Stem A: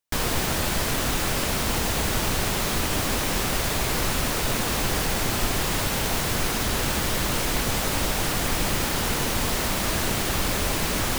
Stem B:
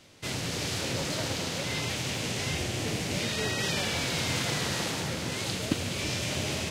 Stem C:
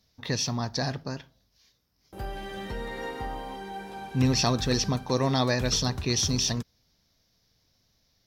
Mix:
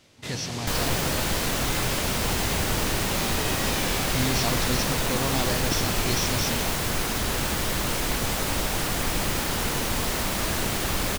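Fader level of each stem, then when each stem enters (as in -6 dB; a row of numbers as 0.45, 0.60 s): -1.5, -2.0, -4.5 dB; 0.55, 0.00, 0.00 s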